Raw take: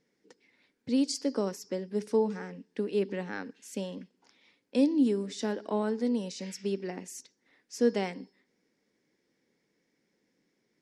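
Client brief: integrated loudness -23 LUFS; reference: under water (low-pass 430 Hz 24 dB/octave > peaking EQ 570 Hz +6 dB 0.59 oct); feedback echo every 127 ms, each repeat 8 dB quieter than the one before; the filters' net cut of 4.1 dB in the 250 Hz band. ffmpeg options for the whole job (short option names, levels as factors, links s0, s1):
-af "lowpass=f=430:w=0.5412,lowpass=f=430:w=1.3066,equalizer=f=250:t=o:g=-5,equalizer=f=570:t=o:w=0.59:g=6,aecho=1:1:127|254|381|508|635:0.398|0.159|0.0637|0.0255|0.0102,volume=3.76"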